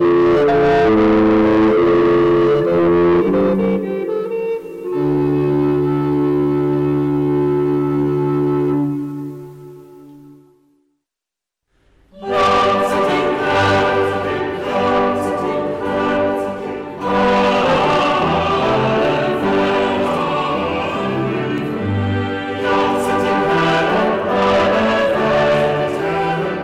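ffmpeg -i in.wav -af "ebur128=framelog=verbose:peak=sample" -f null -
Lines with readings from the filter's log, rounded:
Integrated loudness:
  I:         -16.0 LUFS
  Threshold: -26.4 LUFS
Loudness range:
  LRA:         6.1 LU
  Threshold: -36.8 LUFS
  LRA low:   -20.1 LUFS
  LRA high:  -14.0 LUFS
Sample peak:
  Peak:      -10.2 dBFS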